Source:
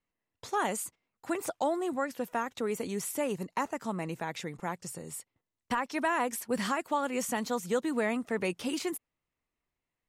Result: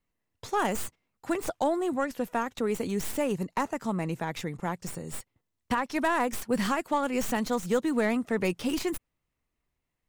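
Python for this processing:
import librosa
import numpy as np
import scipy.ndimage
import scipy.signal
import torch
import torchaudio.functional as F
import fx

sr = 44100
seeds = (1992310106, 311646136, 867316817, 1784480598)

y = fx.tracing_dist(x, sr, depth_ms=0.081)
y = fx.low_shelf(y, sr, hz=190.0, db=7.5)
y = y * librosa.db_to_amplitude(2.0)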